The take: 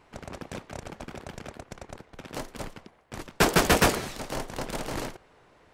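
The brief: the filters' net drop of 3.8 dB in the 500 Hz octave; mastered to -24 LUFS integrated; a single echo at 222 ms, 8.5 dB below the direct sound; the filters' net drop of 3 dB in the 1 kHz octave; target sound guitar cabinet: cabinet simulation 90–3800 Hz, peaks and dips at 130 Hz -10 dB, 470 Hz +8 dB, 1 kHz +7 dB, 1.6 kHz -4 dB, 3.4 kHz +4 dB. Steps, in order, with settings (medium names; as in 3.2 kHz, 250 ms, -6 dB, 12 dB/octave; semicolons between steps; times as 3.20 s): cabinet simulation 90–3800 Hz, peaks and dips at 130 Hz -10 dB, 470 Hz +8 dB, 1 kHz +7 dB, 1.6 kHz -4 dB, 3.4 kHz +4 dB; peaking EQ 500 Hz -9 dB; peaking EQ 1 kHz -5 dB; delay 222 ms -8.5 dB; trim +6 dB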